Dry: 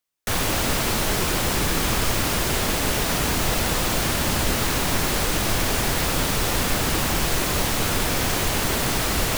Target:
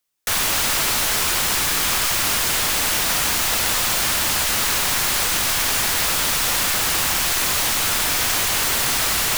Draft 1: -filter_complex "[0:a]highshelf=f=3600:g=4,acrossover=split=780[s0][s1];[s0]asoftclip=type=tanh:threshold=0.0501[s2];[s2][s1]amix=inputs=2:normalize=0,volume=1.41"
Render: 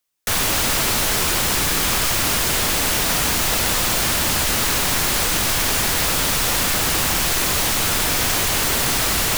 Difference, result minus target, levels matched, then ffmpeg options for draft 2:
saturation: distortion -5 dB
-filter_complex "[0:a]highshelf=f=3600:g=4,acrossover=split=780[s0][s1];[s0]asoftclip=type=tanh:threshold=0.0188[s2];[s2][s1]amix=inputs=2:normalize=0,volume=1.41"

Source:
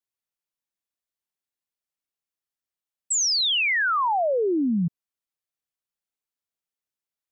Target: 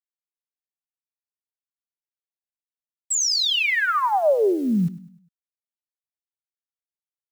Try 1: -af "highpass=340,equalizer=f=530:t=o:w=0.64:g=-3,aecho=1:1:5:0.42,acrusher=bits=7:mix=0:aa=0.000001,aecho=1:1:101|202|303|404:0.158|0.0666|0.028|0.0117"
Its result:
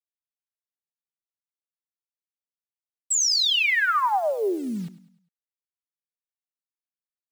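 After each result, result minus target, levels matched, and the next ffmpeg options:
250 Hz band -6.5 dB; 500 Hz band -5.0 dB
-af "equalizer=f=530:t=o:w=0.64:g=-3,aecho=1:1:5:0.42,acrusher=bits=7:mix=0:aa=0.000001,aecho=1:1:101|202|303|404:0.158|0.0666|0.028|0.0117"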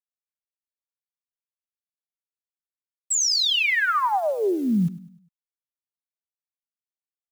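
500 Hz band -4.0 dB
-af "equalizer=f=530:t=o:w=0.64:g=5,aecho=1:1:5:0.42,acrusher=bits=7:mix=0:aa=0.000001,aecho=1:1:101|202|303|404:0.158|0.0666|0.028|0.0117"

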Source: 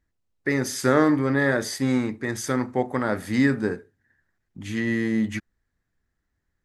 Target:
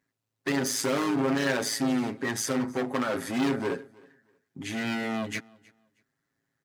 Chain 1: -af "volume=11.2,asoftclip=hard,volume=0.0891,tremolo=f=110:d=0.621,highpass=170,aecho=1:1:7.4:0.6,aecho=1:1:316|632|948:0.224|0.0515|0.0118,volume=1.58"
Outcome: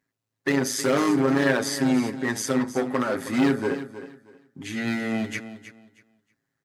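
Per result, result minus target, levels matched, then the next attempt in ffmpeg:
echo-to-direct +12 dB; overload inside the chain: distortion -4 dB
-af "volume=11.2,asoftclip=hard,volume=0.0891,tremolo=f=110:d=0.621,highpass=170,aecho=1:1:7.4:0.6,aecho=1:1:316|632:0.0562|0.0129,volume=1.58"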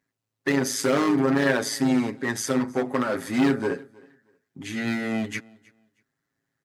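overload inside the chain: distortion -4 dB
-af "volume=23.7,asoftclip=hard,volume=0.0422,tremolo=f=110:d=0.621,highpass=170,aecho=1:1:7.4:0.6,aecho=1:1:316|632:0.0562|0.0129,volume=1.58"

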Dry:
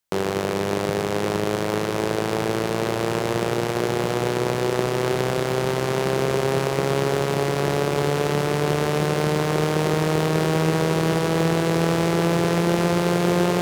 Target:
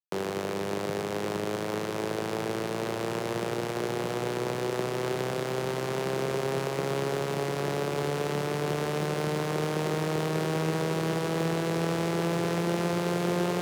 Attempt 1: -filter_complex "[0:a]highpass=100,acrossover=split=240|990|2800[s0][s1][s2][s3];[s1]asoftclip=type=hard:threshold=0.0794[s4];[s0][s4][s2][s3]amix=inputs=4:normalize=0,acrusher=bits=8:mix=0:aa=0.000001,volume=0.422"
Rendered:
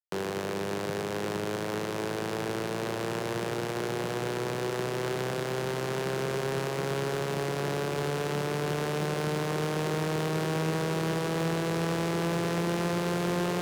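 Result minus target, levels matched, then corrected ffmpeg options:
hard clipper: distortion +38 dB
-filter_complex "[0:a]highpass=100,acrossover=split=240|990|2800[s0][s1][s2][s3];[s1]asoftclip=type=hard:threshold=0.237[s4];[s0][s4][s2][s3]amix=inputs=4:normalize=0,acrusher=bits=8:mix=0:aa=0.000001,volume=0.422"

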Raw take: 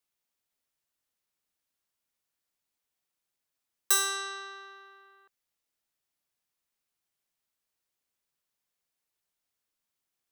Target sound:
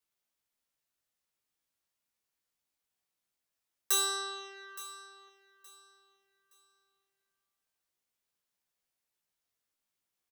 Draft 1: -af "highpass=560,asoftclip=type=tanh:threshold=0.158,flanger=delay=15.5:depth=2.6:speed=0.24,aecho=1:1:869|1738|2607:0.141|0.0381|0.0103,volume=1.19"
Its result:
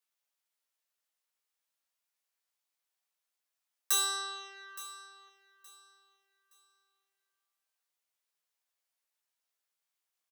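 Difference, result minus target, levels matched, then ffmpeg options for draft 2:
500 Hz band -7.0 dB
-af "asoftclip=type=tanh:threshold=0.158,flanger=delay=15.5:depth=2.6:speed=0.24,aecho=1:1:869|1738|2607:0.141|0.0381|0.0103,volume=1.19"

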